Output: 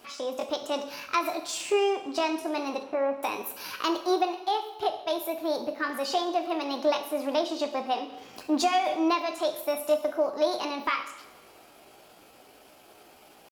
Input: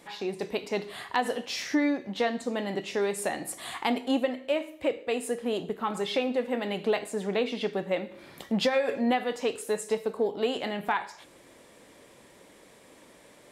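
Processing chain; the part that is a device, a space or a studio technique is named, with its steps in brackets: chipmunk voice (pitch shift +5.5 st); 2.83–3.23 s: steep low-pass 2 kHz; two-slope reverb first 0.9 s, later 3.2 s, from -19 dB, DRR 8.5 dB

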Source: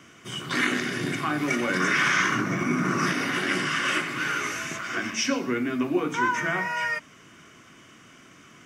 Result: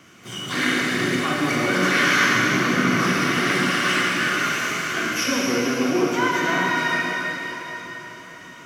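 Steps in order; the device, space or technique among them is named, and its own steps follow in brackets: shimmer-style reverb (harmony voices +12 st -12 dB; reverberation RT60 4.5 s, pre-delay 32 ms, DRR -3 dB)

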